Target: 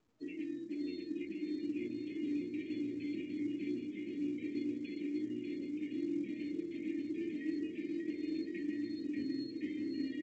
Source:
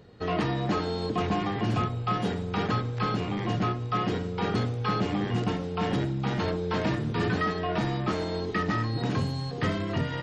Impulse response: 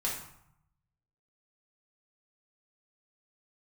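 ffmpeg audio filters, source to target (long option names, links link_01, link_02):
-filter_complex "[0:a]afftdn=noise_reduction=32:noise_floor=-37,asplit=3[link_01][link_02][link_03];[link_01]bandpass=frequency=300:width_type=q:width=8,volume=0dB[link_04];[link_02]bandpass=frequency=870:width_type=q:width=8,volume=-6dB[link_05];[link_03]bandpass=frequency=2240:width_type=q:width=8,volume=-9dB[link_06];[link_04][link_05][link_06]amix=inputs=3:normalize=0,aemphasis=mode=production:type=bsi,aecho=1:1:3.3:0.57,bandreject=frequency=74.45:width_type=h:width=4,bandreject=frequency=148.9:width_type=h:width=4,bandreject=frequency=223.35:width_type=h:width=4,bandreject=frequency=297.8:width_type=h:width=4,bandreject=frequency=372.25:width_type=h:width=4,bandreject=frequency=446.7:width_type=h:width=4,bandreject=frequency=521.15:width_type=h:width=4,bandreject=frequency=595.6:width_type=h:width=4,bandreject=frequency=670.05:width_type=h:width=4,bandreject=frequency=744.5:width_type=h:width=4,bandreject=frequency=818.95:width_type=h:width=4,bandreject=frequency=893.4:width_type=h:width=4,bandreject=frequency=967.85:width_type=h:width=4,areverse,acompressor=threshold=-47dB:ratio=12,areverse,afftfilt=real='re*(1-between(b*sr/4096,630,1600))':imag='im*(1-between(b*sr/4096,630,1600))':win_size=4096:overlap=0.75,flanger=delay=5.6:depth=7.2:regen=-82:speed=0.2:shape=triangular,aecho=1:1:590|1062|1440|1742|1983:0.631|0.398|0.251|0.158|0.1,volume=14.5dB" -ar 16000 -c:a pcm_mulaw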